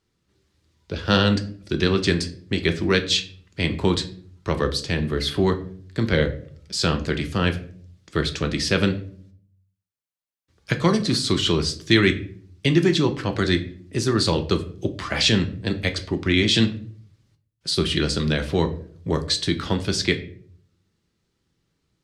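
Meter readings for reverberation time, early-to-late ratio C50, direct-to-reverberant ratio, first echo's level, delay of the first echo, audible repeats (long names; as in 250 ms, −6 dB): 0.55 s, 14.0 dB, 6.5 dB, no echo audible, no echo audible, no echo audible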